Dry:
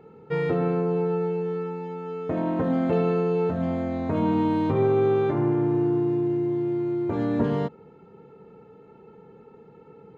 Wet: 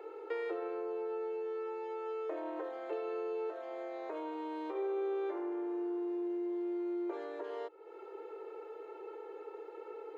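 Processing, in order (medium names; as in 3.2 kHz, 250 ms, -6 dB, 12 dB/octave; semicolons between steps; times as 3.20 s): compression 4:1, threshold -41 dBFS, peak gain reduction 18.5 dB; Chebyshev high-pass 320 Hz, order 8; trim +4.5 dB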